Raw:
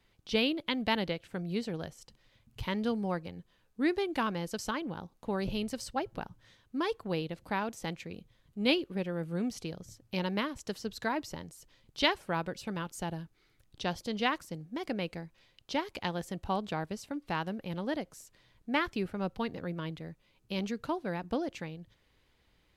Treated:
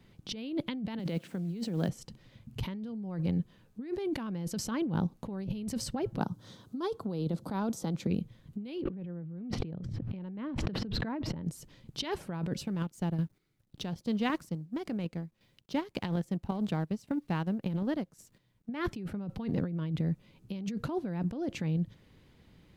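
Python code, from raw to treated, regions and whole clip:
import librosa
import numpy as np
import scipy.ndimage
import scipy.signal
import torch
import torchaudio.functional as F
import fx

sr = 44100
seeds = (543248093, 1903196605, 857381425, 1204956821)

y = fx.chain(x, sr, fx.highpass(hz=160.0, slope=24),
    fx.quant_companded(bits=6), at=(0.99, 1.89))
y = fx.chain(y, sr, fx.highpass(hz=190.0, slope=6),
    fx.band_shelf(hz=2200.0, db=-10.0, octaves=1.0),
    fx.band_squash(depth_pct=40), at=(6.19, 8.07))
y = fx.chain(y, sr, fx.air_absorb(metres=400.0),
    fx.env_flatten(amount_pct=100), at=(8.82, 11.45))
y = fx.chain(y, sr, fx.law_mismatch(coded='A'),
    fx.chopper(hz=1.8, depth_pct=60, duty_pct=35), at=(12.63, 18.69))
y = fx.peak_eq(y, sr, hz=170.0, db=14.0, octaves=2.3)
y = fx.over_compress(y, sr, threshold_db=-31.0, ratio=-1.0)
y = F.gain(torch.from_numpy(y), -3.0).numpy()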